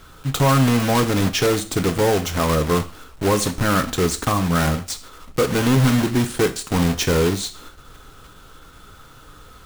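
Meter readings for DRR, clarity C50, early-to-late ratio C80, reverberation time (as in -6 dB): 8.0 dB, 15.0 dB, 19.5 dB, 0.40 s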